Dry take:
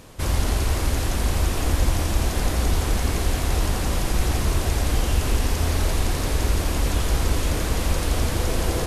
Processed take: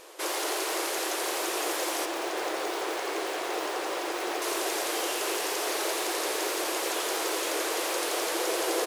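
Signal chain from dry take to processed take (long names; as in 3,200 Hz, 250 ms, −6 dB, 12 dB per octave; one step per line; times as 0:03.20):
0:02.05–0:04.42: low-pass filter 2,900 Hz 6 dB per octave
noise that follows the level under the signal 31 dB
linear-phase brick-wall high-pass 310 Hz
echo with shifted repeats 239 ms, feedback 58%, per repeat −62 Hz, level −23.5 dB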